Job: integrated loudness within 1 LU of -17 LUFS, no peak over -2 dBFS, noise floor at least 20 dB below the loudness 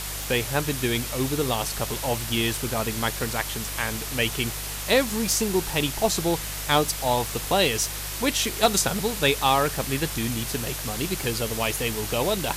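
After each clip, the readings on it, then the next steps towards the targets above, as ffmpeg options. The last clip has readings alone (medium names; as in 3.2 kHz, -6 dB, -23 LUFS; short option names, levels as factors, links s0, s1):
hum 50 Hz; highest harmonic 150 Hz; hum level -35 dBFS; noise floor -33 dBFS; noise floor target -45 dBFS; loudness -24.5 LUFS; peak level -8.0 dBFS; loudness target -17.0 LUFS
-> -af "bandreject=f=50:t=h:w=4,bandreject=f=100:t=h:w=4,bandreject=f=150:t=h:w=4"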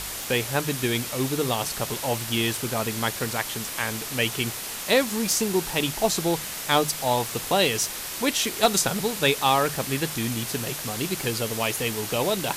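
hum not found; noise floor -34 dBFS; noise floor target -45 dBFS
-> -af "afftdn=nr=11:nf=-34"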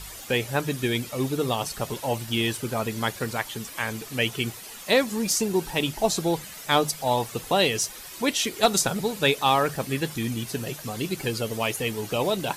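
noise floor -41 dBFS; noise floor target -46 dBFS
-> -af "afftdn=nr=6:nf=-41"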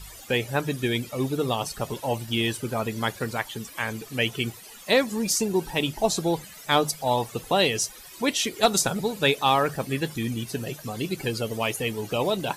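noise floor -45 dBFS; noise floor target -46 dBFS
-> -af "afftdn=nr=6:nf=-45"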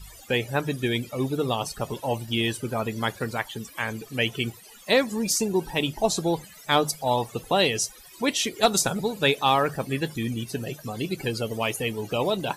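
noise floor -48 dBFS; loudness -26.0 LUFS; peak level -8.0 dBFS; loudness target -17.0 LUFS
-> -af "volume=2.82,alimiter=limit=0.794:level=0:latency=1"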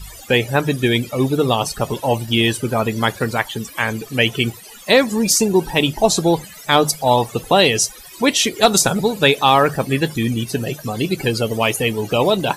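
loudness -17.5 LUFS; peak level -2.0 dBFS; noise floor -39 dBFS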